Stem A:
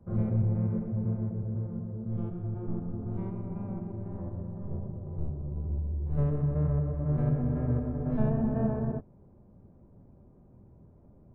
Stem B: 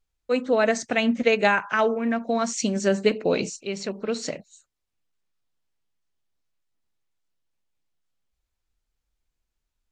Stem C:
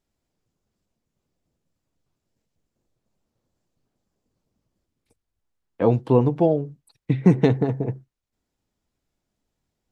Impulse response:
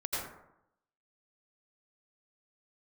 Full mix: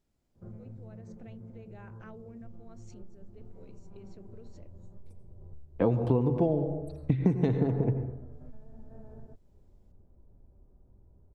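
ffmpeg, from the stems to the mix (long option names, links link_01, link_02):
-filter_complex "[0:a]bandreject=frequency=1100:width=12,asubboost=boost=7:cutoff=55,adelay=350,volume=-8.5dB[link_01];[1:a]tiltshelf=frequency=850:gain=8.5,acompressor=threshold=-24dB:ratio=6,alimiter=limit=-23dB:level=0:latency=1:release=39,adelay=300,volume=-15.5dB[link_02];[2:a]lowshelf=frequency=460:gain=6.5,volume=-5dB,asplit=2[link_03][link_04];[link_04]volume=-12.5dB[link_05];[link_01][link_02]amix=inputs=2:normalize=0,equalizer=frequency=410:width_type=o:width=0.31:gain=3,acompressor=threshold=-43dB:ratio=6,volume=0dB[link_06];[3:a]atrim=start_sample=2205[link_07];[link_05][link_07]afir=irnorm=-1:irlink=0[link_08];[link_03][link_06][link_08]amix=inputs=3:normalize=0,acompressor=threshold=-22dB:ratio=6"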